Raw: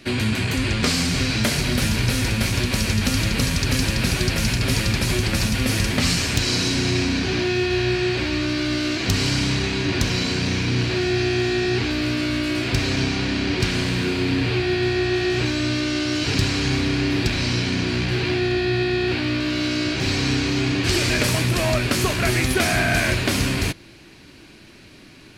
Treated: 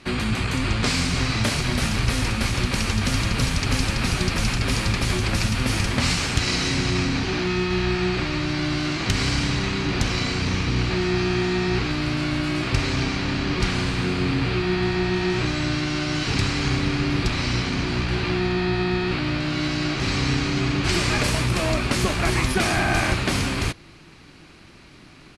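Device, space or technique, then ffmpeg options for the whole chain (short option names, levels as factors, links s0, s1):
octave pedal: -filter_complex "[0:a]lowpass=f=11000:w=0.5412,lowpass=f=11000:w=1.3066,asplit=2[s0][s1];[s1]asetrate=22050,aresample=44100,atempo=2,volume=0.708[s2];[s0][s2]amix=inputs=2:normalize=0,volume=0.708"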